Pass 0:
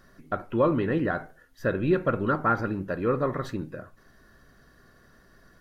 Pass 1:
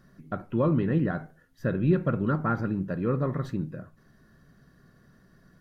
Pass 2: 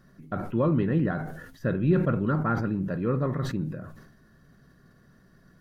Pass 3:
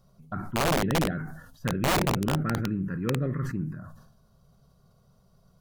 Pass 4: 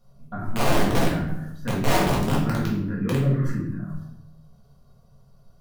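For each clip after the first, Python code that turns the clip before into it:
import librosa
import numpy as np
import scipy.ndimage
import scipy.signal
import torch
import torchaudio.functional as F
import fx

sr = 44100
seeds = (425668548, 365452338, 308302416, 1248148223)

y1 = fx.peak_eq(x, sr, hz=160.0, db=12.5, octaves=1.4)
y1 = y1 * librosa.db_to_amplitude(-6.0)
y2 = fx.sustainer(y1, sr, db_per_s=56.0)
y3 = fx.env_phaser(y2, sr, low_hz=290.0, high_hz=1400.0, full_db=-19.5)
y3 = (np.mod(10.0 ** (18.5 / 20.0) * y3 + 1.0, 2.0) - 1.0) / 10.0 ** (18.5 / 20.0)
y4 = fx.room_shoebox(y3, sr, seeds[0], volume_m3=180.0, walls='mixed', distance_m=1.8)
y4 = y4 * librosa.db_to_amplitude(-4.0)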